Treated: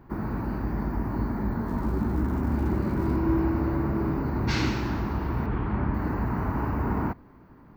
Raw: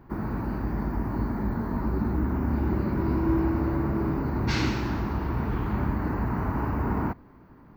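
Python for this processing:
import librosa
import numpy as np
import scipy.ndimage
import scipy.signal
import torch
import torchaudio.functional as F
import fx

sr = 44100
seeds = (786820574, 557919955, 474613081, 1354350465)

y = fx.dmg_crackle(x, sr, seeds[0], per_s=340.0, level_db=-43.0, at=(1.66, 3.15), fade=0.02)
y = fx.lowpass(y, sr, hz=3000.0, slope=12, at=(5.46, 5.94))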